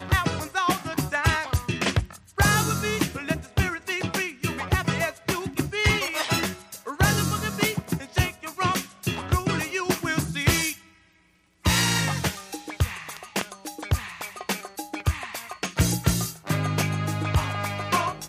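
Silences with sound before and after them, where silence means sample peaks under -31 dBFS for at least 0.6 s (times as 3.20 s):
10.74–11.65 s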